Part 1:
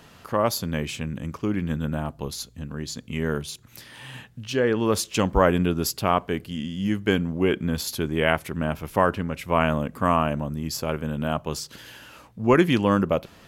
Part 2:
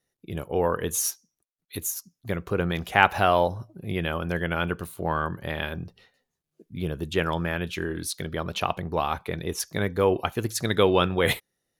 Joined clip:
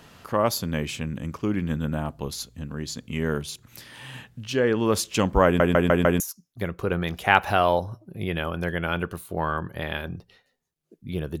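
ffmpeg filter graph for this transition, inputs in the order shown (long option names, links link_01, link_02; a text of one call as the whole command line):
ffmpeg -i cue0.wav -i cue1.wav -filter_complex "[0:a]apad=whole_dur=11.4,atrim=end=11.4,asplit=5[link_01][link_02][link_03][link_04][link_05];[link_01]atrim=end=5.602[link_06];[link_02]atrim=start=5.448:end=5.602[link_07];[link_03]atrim=start=5.448:end=5.602[link_08];[link_04]atrim=start=5.448:end=5.602[link_09];[link_05]atrim=start=5.448:end=5.602[link_10];[1:a]atrim=start=1.878:end=7.08[link_11];[link_06][link_07]acrossfade=duration=0.004:curve1=hsin:curve2=hsin[link_12];[link_12][link_08]acrossfade=duration=0.004:curve1=hsin:curve2=hsin[link_13];[link_13][link_09]acrossfade=duration=0.004:curve1=hsin:curve2=hsin[link_14];[link_14][link_10]acrossfade=duration=0.004:curve1=hsin:curve2=hsin[link_15];[link_15][link_11]acrossfade=duration=0.004:curve1=hsin:curve2=hsin" out.wav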